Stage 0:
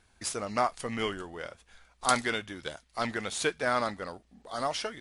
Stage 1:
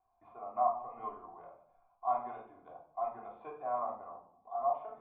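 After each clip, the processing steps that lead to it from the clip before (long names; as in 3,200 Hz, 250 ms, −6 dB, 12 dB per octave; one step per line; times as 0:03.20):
formant resonators in series a
tape wow and flutter 27 cents
convolution reverb RT60 0.60 s, pre-delay 3 ms, DRR −2 dB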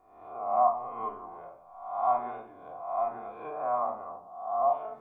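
peak hold with a rise ahead of every peak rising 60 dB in 0.80 s
level +4.5 dB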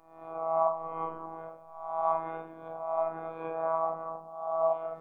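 low-shelf EQ 200 Hz +5 dB
in parallel at −1.5 dB: downward compressor, threshold −34 dBFS, peak gain reduction 15 dB
on the sum: phases set to zero 163 Hz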